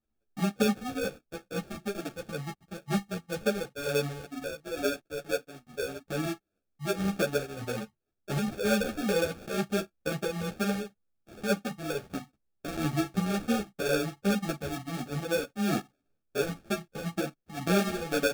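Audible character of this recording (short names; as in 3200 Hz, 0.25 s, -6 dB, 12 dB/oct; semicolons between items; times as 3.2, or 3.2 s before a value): phasing stages 2, 2.1 Hz, lowest notch 550–1500 Hz; aliases and images of a low sample rate 1000 Hz, jitter 0%; a shimmering, thickened sound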